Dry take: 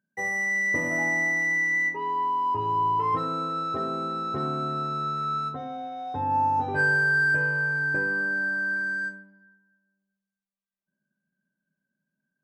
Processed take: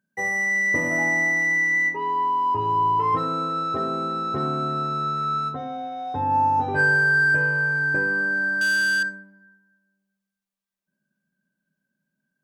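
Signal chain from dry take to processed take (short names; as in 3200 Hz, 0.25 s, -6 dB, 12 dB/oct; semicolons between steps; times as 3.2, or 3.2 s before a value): 8.61–9.03 sample leveller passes 3; gain +3.5 dB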